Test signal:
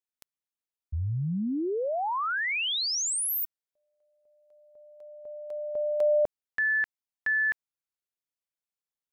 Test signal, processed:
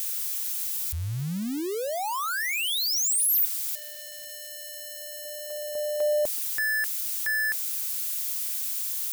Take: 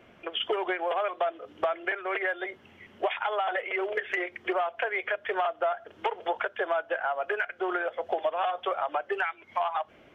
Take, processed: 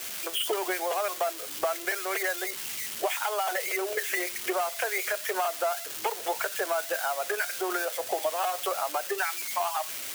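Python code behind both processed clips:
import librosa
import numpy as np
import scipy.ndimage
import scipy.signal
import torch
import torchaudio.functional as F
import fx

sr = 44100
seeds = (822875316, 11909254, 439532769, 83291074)

y = x + 0.5 * 10.0 ** (-22.5 / 20.0) * np.diff(np.sign(x), prepend=np.sign(x[:1]))
y = F.gain(torch.from_numpy(y), -1.0).numpy()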